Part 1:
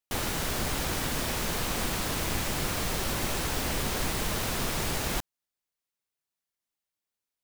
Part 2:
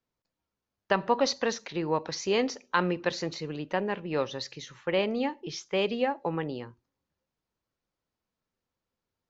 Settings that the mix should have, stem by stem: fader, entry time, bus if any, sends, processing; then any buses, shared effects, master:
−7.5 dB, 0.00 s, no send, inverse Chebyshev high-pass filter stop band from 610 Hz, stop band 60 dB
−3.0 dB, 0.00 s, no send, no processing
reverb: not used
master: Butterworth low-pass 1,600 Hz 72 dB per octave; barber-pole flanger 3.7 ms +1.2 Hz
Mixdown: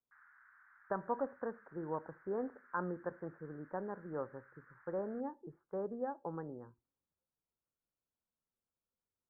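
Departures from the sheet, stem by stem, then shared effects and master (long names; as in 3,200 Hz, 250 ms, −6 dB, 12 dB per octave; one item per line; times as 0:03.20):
stem 2 −3.0 dB → −11.5 dB
master: missing barber-pole flanger 3.7 ms +1.2 Hz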